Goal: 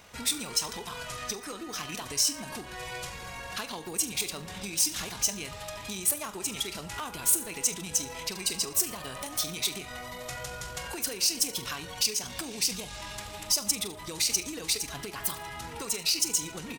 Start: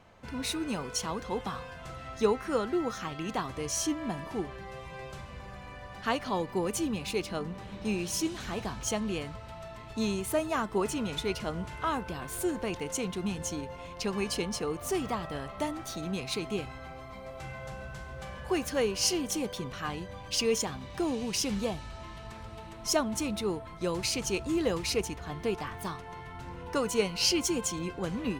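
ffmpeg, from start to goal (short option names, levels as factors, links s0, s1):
-af "acompressor=threshold=0.0141:ratio=16,volume=47.3,asoftclip=hard,volume=0.0211,asetrate=41454,aresample=44100,aecho=1:1:69|138|207|276|345:0.251|0.128|0.0653|0.0333|0.017,atempo=1.8,crystalizer=i=9:c=0"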